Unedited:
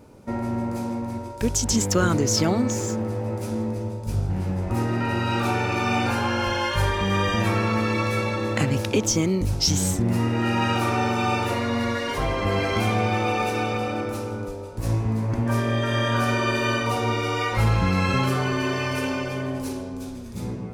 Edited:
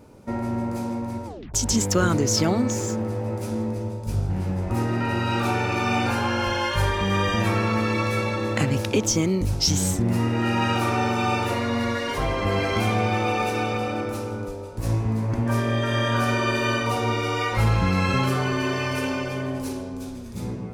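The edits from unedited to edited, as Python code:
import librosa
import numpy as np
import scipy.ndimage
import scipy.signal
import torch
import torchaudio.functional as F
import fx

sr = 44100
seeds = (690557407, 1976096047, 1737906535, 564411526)

y = fx.edit(x, sr, fx.tape_stop(start_s=1.26, length_s=0.28), tone=tone)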